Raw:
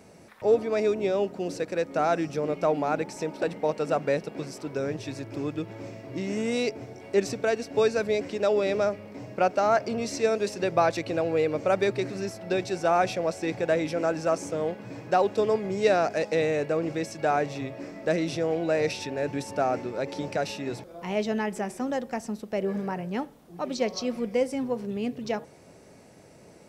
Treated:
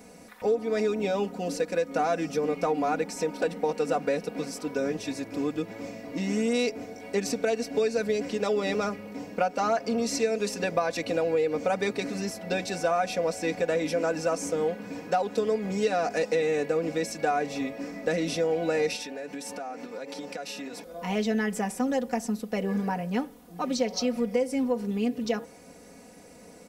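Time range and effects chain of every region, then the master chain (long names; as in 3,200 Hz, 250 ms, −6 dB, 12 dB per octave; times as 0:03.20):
0:18.96–0:20.86: high-pass filter 300 Hz 6 dB per octave + downward compressor 5 to 1, threshold −36 dBFS
whole clip: high-shelf EQ 8,900 Hz +8 dB; comb filter 4.1 ms, depth 82%; downward compressor, threshold −22 dBFS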